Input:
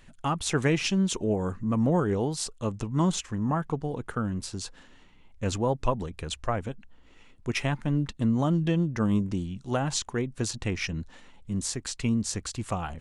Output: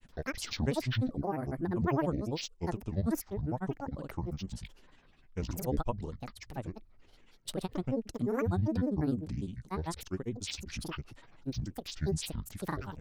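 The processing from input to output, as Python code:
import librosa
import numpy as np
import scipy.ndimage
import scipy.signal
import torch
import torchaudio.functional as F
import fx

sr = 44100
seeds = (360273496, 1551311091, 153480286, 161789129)

y = fx.dynamic_eq(x, sr, hz=1800.0, q=0.81, threshold_db=-46.0, ratio=4.0, max_db=-8)
y = fx.granulator(y, sr, seeds[0], grain_ms=84.0, per_s=20.0, spray_ms=100.0, spread_st=12)
y = y * librosa.db_to_amplitude(-4.0)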